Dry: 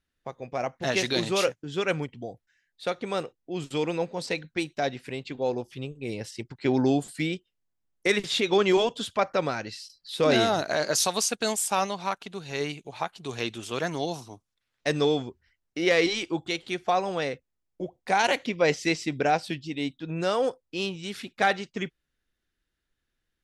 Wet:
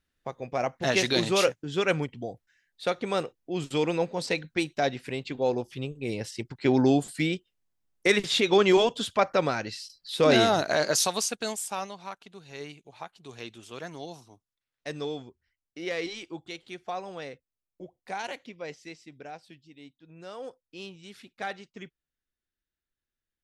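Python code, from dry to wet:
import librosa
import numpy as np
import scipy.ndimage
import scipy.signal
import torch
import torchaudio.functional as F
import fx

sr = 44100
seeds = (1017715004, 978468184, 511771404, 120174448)

y = fx.gain(x, sr, db=fx.line((10.83, 1.5), (11.99, -10.0), (18.0, -10.0), (18.98, -19.0), (20.13, -19.0), (20.6, -11.5)))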